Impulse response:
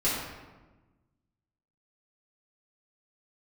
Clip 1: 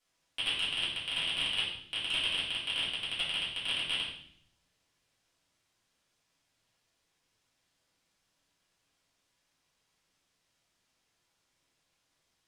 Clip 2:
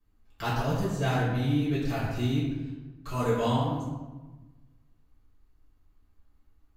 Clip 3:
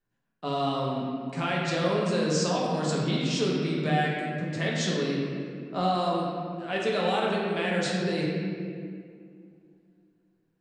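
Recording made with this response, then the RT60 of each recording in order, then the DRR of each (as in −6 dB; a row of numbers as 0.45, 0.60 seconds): 2; 0.65, 1.2, 2.2 seconds; −10.0, −10.0, −4.5 decibels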